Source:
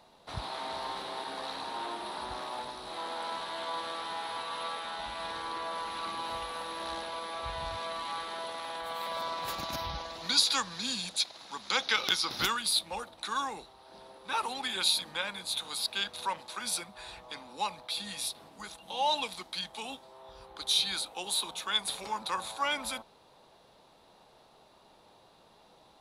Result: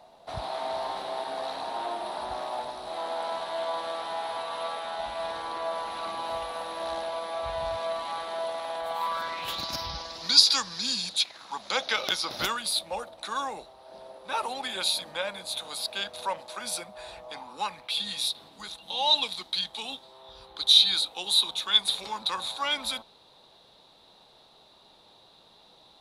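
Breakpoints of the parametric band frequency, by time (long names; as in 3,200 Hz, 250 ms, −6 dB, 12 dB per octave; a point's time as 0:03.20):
parametric band +11.5 dB 0.52 octaves
0:08.90 680 Hz
0:09.69 5,100 Hz
0:11.07 5,100 Hz
0:11.63 610 Hz
0:17.28 610 Hz
0:18.04 3,800 Hz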